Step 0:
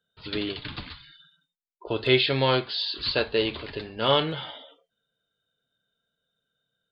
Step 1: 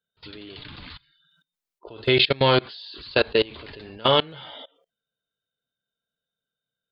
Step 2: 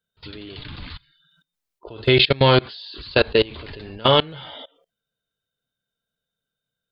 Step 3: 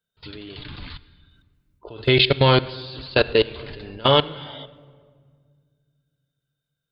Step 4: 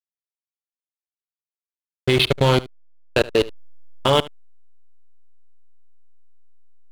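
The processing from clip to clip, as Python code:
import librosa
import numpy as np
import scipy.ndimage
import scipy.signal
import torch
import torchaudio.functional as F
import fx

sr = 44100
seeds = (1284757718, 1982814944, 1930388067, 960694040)

y1 = fx.level_steps(x, sr, step_db=24)
y1 = y1 * librosa.db_to_amplitude(7.0)
y2 = fx.low_shelf(y1, sr, hz=120.0, db=9.0)
y2 = y2 * librosa.db_to_amplitude(2.5)
y3 = fx.room_shoebox(y2, sr, seeds[0], volume_m3=3100.0, walls='mixed', distance_m=0.36)
y3 = y3 * librosa.db_to_amplitude(-1.0)
y4 = fx.add_hum(y3, sr, base_hz=50, snr_db=35)
y4 = fx.backlash(y4, sr, play_db=-16.0)
y4 = y4 + 10.0 ** (-19.5 / 20.0) * np.pad(y4, (int(74 * sr / 1000.0), 0))[:len(y4)]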